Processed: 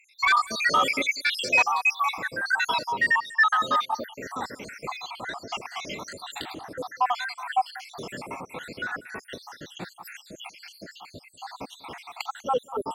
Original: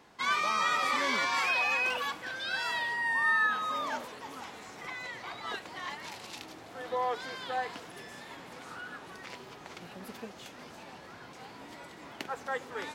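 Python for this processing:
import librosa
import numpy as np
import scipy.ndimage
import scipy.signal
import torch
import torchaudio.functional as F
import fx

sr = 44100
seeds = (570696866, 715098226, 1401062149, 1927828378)

p1 = fx.spec_dropout(x, sr, seeds[0], share_pct=77)
p2 = fx.fold_sine(p1, sr, drive_db=7, ceiling_db=-19.0)
p3 = p1 + F.gain(torch.from_numpy(p2), -12.0).numpy()
p4 = p3 + 10.0 ** (-21.0 / 20.0) * np.pad(p3, (int(195 * sr / 1000.0), 0))[:len(p3)]
y = F.gain(torch.from_numpy(p4), 7.5).numpy()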